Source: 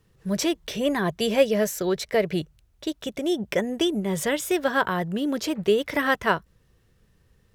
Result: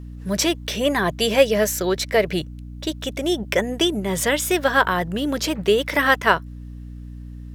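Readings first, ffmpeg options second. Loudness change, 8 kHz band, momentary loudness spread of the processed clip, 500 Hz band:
+4.5 dB, +7.0 dB, 20 LU, +3.5 dB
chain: -af "lowshelf=frequency=460:gain=-7.5,aeval=exprs='val(0)+0.00891*(sin(2*PI*60*n/s)+sin(2*PI*2*60*n/s)/2+sin(2*PI*3*60*n/s)/3+sin(2*PI*4*60*n/s)/4+sin(2*PI*5*60*n/s)/5)':channel_layout=same,volume=7dB"

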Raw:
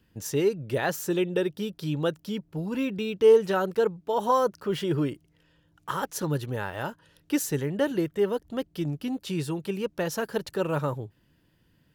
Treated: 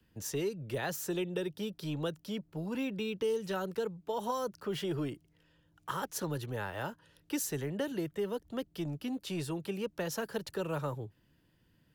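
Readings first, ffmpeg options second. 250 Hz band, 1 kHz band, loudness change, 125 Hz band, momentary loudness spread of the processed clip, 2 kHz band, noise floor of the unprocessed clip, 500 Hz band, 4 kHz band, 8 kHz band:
−7.5 dB, −9.5 dB, −9.0 dB, −7.5 dB, 6 LU, −7.0 dB, −66 dBFS, −10.5 dB, −5.0 dB, −4.0 dB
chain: -filter_complex "[0:a]acrossover=split=210|3000[link_01][link_02][link_03];[link_02]acompressor=threshold=-28dB:ratio=6[link_04];[link_01][link_04][link_03]amix=inputs=3:normalize=0,acrossover=split=300|680|4400[link_05][link_06][link_07][link_08];[link_05]asoftclip=type=tanh:threshold=-32dB[link_09];[link_09][link_06][link_07][link_08]amix=inputs=4:normalize=0,volume=-4dB"

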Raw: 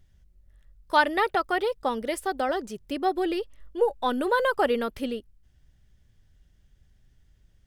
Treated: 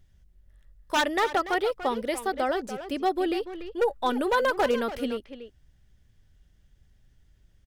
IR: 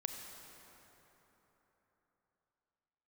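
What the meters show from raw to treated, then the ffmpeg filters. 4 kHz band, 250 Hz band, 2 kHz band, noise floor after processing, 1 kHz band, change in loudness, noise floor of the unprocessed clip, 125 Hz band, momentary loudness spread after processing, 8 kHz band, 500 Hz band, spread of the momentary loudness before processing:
+1.5 dB, 0.0 dB, −1.5 dB, −62 dBFS, −1.0 dB, −0.5 dB, −62 dBFS, can't be measured, 9 LU, +3.5 dB, −0.5 dB, 10 LU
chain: -filter_complex "[0:a]aeval=exprs='0.15*(abs(mod(val(0)/0.15+3,4)-2)-1)':channel_layout=same,asplit=2[link_01][link_02];[link_02]adelay=290,highpass=300,lowpass=3400,asoftclip=type=hard:threshold=-24.5dB,volume=-9dB[link_03];[link_01][link_03]amix=inputs=2:normalize=0"

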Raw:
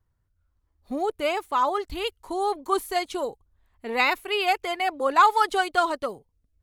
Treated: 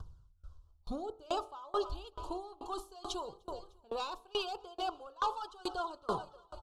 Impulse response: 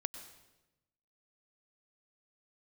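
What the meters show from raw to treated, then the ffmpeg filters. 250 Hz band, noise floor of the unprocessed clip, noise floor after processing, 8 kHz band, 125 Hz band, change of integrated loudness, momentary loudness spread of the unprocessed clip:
−11.5 dB, −73 dBFS, −66 dBFS, −12.0 dB, can't be measured, −15.0 dB, 12 LU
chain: -filter_complex "[0:a]asoftclip=type=tanh:threshold=-15.5dB,equalizer=frequency=100:width_type=o:width=0.67:gain=-4,equalizer=frequency=250:width_type=o:width=0.67:gain=-12,equalizer=frequency=630:width_type=o:width=0.67:gain=-3,equalizer=frequency=2500:width_type=o:width=0.67:gain=-3,aecho=1:1:302|604|906|1208:0.0891|0.0437|0.0214|0.0105,areverse,acompressor=threshold=-36dB:ratio=10,areverse,lowpass=5800,aphaser=in_gain=1:out_gain=1:delay=2:decay=0.36:speed=0.86:type=triangular,bandreject=frequency=48.61:width_type=h:width=4,bandreject=frequency=97.22:width_type=h:width=4,bandreject=frequency=145.83:width_type=h:width=4,bandreject=frequency=194.44:width_type=h:width=4,bandreject=frequency=243.05:width_type=h:width=4,bandreject=frequency=291.66:width_type=h:width=4,bandreject=frequency=340.27:width_type=h:width=4,bandreject=frequency=388.88:width_type=h:width=4,bandreject=frequency=437.49:width_type=h:width=4,bandreject=frequency=486.1:width_type=h:width=4,bandreject=frequency=534.71:width_type=h:width=4,bandreject=frequency=583.32:width_type=h:width=4,bandreject=frequency=631.93:width_type=h:width=4,bandreject=frequency=680.54:width_type=h:width=4,bandreject=frequency=729.15:width_type=h:width=4,bandreject=frequency=777.76:width_type=h:width=4,bandreject=frequency=826.37:width_type=h:width=4,bandreject=frequency=874.98:width_type=h:width=4,bandreject=frequency=923.59:width_type=h:width=4,bandreject=frequency=972.2:width_type=h:width=4,bandreject=frequency=1020.81:width_type=h:width=4,bandreject=frequency=1069.42:width_type=h:width=4,bandreject=frequency=1118.03:width_type=h:width=4,bandreject=frequency=1166.64:width_type=h:width=4,bandreject=frequency=1215.25:width_type=h:width=4,bandreject=frequency=1263.86:width_type=h:width=4,bandreject=frequency=1312.47:width_type=h:width=4,bandreject=frequency=1361.08:width_type=h:width=4,acompressor=mode=upward:threshold=-50dB:ratio=2.5,asuperstop=centerf=2000:order=4:qfactor=1.1,equalizer=frequency=500:width=1.5:gain=-2,asplit=2[link_01][link_02];[1:a]atrim=start_sample=2205,lowshelf=frequency=270:gain=10.5[link_03];[link_02][link_03]afir=irnorm=-1:irlink=0,volume=-11dB[link_04];[link_01][link_04]amix=inputs=2:normalize=0,aeval=exprs='val(0)*pow(10,-28*if(lt(mod(2.3*n/s,1),2*abs(2.3)/1000),1-mod(2.3*n/s,1)/(2*abs(2.3)/1000),(mod(2.3*n/s,1)-2*abs(2.3)/1000)/(1-2*abs(2.3)/1000))/20)':channel_layout=same,volume=10dB"

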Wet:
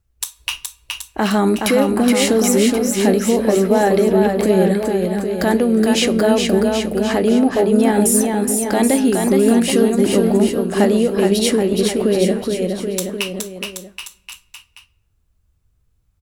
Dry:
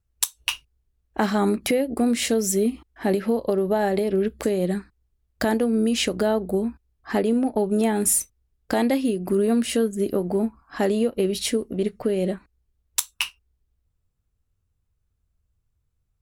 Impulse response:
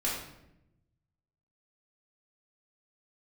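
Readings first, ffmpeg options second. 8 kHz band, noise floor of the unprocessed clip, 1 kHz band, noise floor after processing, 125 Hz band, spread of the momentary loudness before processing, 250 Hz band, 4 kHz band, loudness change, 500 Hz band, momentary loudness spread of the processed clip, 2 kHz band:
+6.0 dB, −74 dBFS, +7.5 dB, −63 dBFS, +8.5 dB, 8 LU, +8.5 dB, +7.5 dB, +7.5 dB, +8.0 dB, 11 LU, +7.5 dB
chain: -filter_complex "[0:a]alimiter=limit=-14.5dB:level=0:latency=1,aecho=1:1:420|777|1080|1338|1558:0.631|0.398|0.251|0.158|0.1,asplit=2[link_01][link_02];[1:a]atrim=start_sample=2205[link_03];[link_02][link_03]afir=irnorm=-1:irlink=0,volume=-23.5dB[link_04];[link_01][link_04]amix=inputs=2:normalize=0,volume=6.5dB"

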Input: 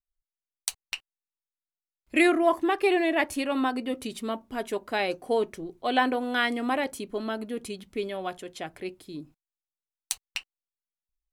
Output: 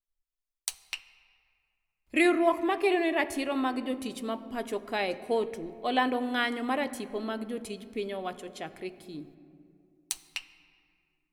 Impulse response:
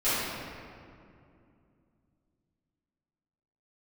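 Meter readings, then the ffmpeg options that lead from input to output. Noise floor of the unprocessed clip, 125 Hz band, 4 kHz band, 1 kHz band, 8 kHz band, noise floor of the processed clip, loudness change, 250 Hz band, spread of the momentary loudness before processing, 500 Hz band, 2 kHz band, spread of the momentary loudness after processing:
below −85 dBFS, −2.0 dB, −2.5 dB, −2.5 dB, −2.5 dB, −84 dBFS, −2.5 dB, −2.0 dB, 14 LU, −2.5 dB, −3.0 dB, 15 LU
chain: -filter_complex "[0:a]bandreject=frequency=1500:width=25,asplit=2[link_01][link_02];[1:a]atrim=start_sample=2205,lowshelf=frequency=170:gain=10[link_03];[link_02][link_03]afir=irnorm=-1:irlink=0,volume=-27dB[link_04];[link_01][link_04]amix=inputs=2:normalize=0,volume=-3dB"

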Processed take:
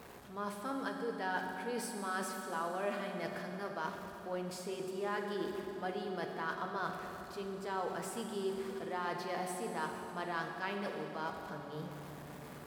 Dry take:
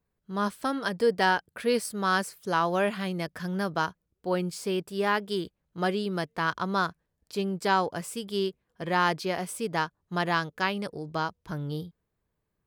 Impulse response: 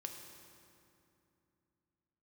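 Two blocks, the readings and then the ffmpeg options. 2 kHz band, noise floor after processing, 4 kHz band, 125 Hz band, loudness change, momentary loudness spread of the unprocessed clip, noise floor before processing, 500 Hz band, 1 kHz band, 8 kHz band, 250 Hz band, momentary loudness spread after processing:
−11.0 dB, −49 dBFS, −13.0 dB, −13.0 dB, −10.5 dB, 9 LU, −81 dBFS, −9.5 dB, −10.5 dB, −7.5 dB, −10.5 dB, 7 LU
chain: -filter_complex "[0:a]aeval=exprs='val(0)+0.5*0.0119*sgn(val(0))':channel_layout=same,highshelf=frequency=2200:gain=-9.5,areverse,acompressor=threshold=-34dB:ratio=6,areverse,highpass=frequency=450:poles=1[link_01];[1:a]atrim=start_sample=2205,asetrate=30870,aresample=44100[link_02];[link_01][link_02]afir=irnorm=-1:irlink=0,volume=2dB"

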